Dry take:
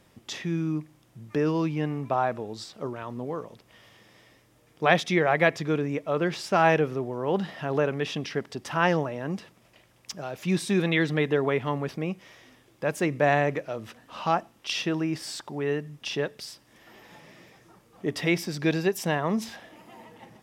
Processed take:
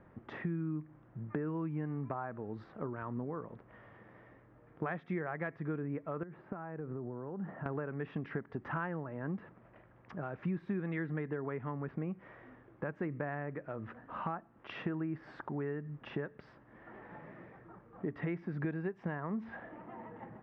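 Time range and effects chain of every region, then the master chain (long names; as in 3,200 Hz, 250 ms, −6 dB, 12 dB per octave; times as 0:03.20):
0:06.23–0:07.66: high-pass filter 88 Hz + downward compressor, threshold −34 dBFS + head-to-tape spacing loss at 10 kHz 45 dB
whole clip: Chebyshev low-pass filter 1,600 Hz, order 3; downward compressor 6 to 1, threshold −34 dBFS; dynamic equaliser 610 Hz, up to −6 dB, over −49 dBFS, Q 1.1; level +1.5 dB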